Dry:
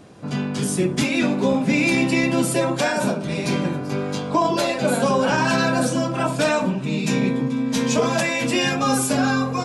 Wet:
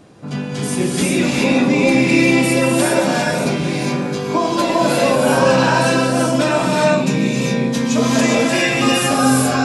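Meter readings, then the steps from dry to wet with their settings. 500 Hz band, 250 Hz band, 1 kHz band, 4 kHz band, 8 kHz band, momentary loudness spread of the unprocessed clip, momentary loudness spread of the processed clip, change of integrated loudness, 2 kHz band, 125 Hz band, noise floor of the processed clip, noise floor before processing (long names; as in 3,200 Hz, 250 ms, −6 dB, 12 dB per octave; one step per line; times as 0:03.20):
+6.0 dB, +5.0 dB, +5.0 dB, +5.5 dB, +5.0 dB, 5 LU, 7 LU, +5.0 dB, +5.0 dB, +4.5 dB, −23 dBFS, −28 dBFS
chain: reverb whose tail is shaped and stops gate 430 ms rising, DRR −3.5 dB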